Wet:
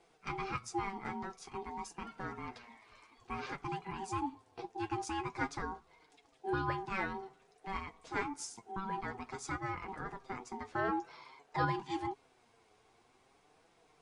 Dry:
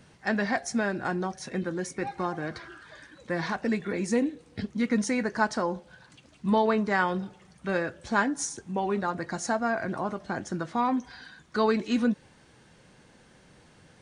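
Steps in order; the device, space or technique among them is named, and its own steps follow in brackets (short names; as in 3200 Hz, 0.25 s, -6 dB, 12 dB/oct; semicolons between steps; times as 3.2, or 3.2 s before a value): alien voice (ring modulator 580 Hz; flange 0.51 Hz, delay 5.8 ms, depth 3.7 ms, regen +37%); 10.75–11.65 bell 840 Hz +6.5 dB 2.2 oct; gain -4.5 dB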